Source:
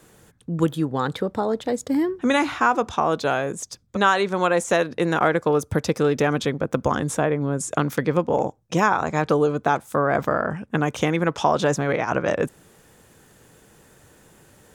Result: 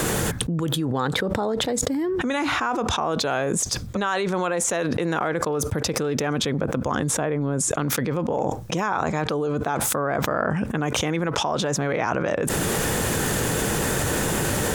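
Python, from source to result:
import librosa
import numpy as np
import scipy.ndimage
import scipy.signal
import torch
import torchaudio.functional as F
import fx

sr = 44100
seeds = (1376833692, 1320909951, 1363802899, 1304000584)

y = fx.env_flatten(x, sr, amount_pct=100)
y = y * 10.0 ** (-8.5 / 20.0)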